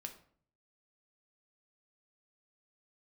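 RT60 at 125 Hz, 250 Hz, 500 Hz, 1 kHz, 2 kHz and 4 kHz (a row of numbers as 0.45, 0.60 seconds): 0.80, 0.70, 0.55, 0.50, 0.45, 0.35 seconds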